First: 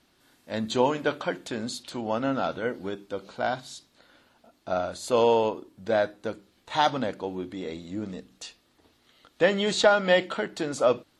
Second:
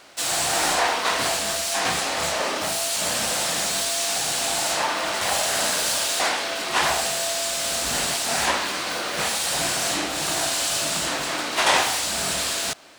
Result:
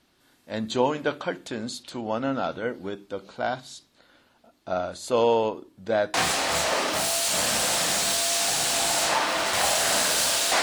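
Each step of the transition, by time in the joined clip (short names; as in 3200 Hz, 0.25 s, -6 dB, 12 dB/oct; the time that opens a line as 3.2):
first
6.14 switch to second from 1.82 s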